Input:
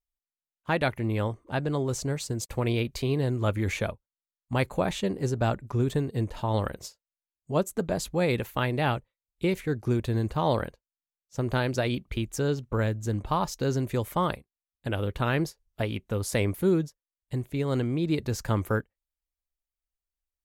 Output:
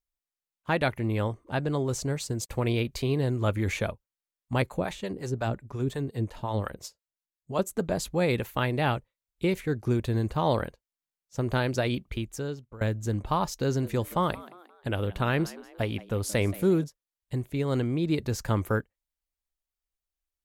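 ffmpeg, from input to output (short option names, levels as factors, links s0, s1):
-filter_complex "[0:a]asettb=1/sr,asplit=3[s0][s1][s2];[s0]atrim=end=4.624[s3];[s1]atrim=start=4.62:end=7.59,asetpts=PTS-STARTPTS,afade=t=in:d=0.004:c=qsin,afade=t=out:st=2.966:d=0.004:c=qsin,acrossover=split=560[s4][s5];[s4]aeval=exprs='val(0)*(1-0.7/2+0.7/2*cos(2*PI*5.6*n/s))':c=same[s6];[s5]aeval=exprs='val(0)*(1-0.7/2-0.7/2*cos(2*PI*5.6*n/s))':c=same[s7];[s6][s7]amix=inputs=2:normalize=0[s8];[s2]atrim=start=7.586[s9];[s3][s8]acrossfade=d=0.004:c1=hsin:c2=qsin[s10];[s10][s9]acrossfade=d=0.004:c1=qsin:c2=hsin,asettb=1/sr,asplit=3[s11][s12][s13];[s11]atrim=end=13.654[s14];[s12]atrim=start=13.65:end=16.84,asetpts=PTS-STARTPTS,afade=t=in:d=0.004:c=qsin,afade=t=out:st=3.186:d=0.004:c=qsin,asplit=4[s15][s16][s17][s18];[s16]adelay=176,afreqshift=87,volume=0.112[s19];[s17]adelay=352,afreqshift=174,volume=0.0484[s20];[s18]adelay=528,afreqshift=261,volume=0.0207[s21];[s15][s19][s20][s21]amix=inputs=4:normalize=0,atrim=end_sample=140679[s22];[s13]atrim=start=16.836[s23];[s14][s22]acrossfade=d=0.004:c1=hsin:c2=qsin[s24];[s24][s23]acrossfade=d=0.004:c1=qsin:c2=hsin,asplit=2[s25][s26];[s25]atrim=end=12.81,asetpts=PTS-STARTPTS,afade=t=out:st=11.98:d=0.83:silence=0.0891251[s27];[s26]atrim=start=12.81,asetpts=PTS-STARTPTS,afade=t=in:d=0.004:c=hsin:silence=0.0891251[s28];[s27][s28]concat=n=2:v=0:a=1"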